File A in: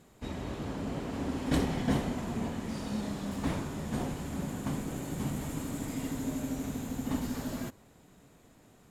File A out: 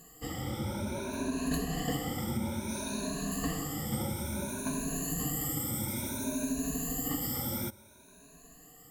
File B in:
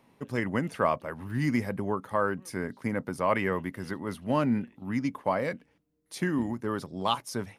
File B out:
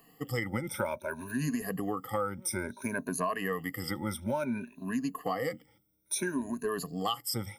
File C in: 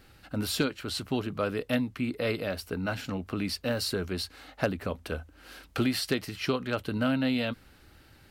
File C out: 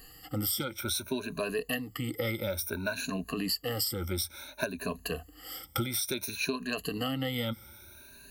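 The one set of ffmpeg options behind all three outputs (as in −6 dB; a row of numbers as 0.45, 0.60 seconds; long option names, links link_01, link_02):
-af "afftfilt=real='re*pow(10,23/40*sin(2*PI*(1.5*log(max(b,1)*sr/1024/100)/log(2)-(0.58)*(pts-256)/sr)))':imag='im*pow(10,23/40*sin(2*PI*(1.5*log(max(b,1)*sr/1024/100)/log(2)-(0.58)*(pts-256)/sr)))':win_size=1024:overlap=0.75,aemphasis=mode=production:type=50fm,acompressor=threshold=-25dB:ratio=6,volume=-3.5dB"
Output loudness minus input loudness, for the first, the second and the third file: +1.0, −3.5, −2.0 LU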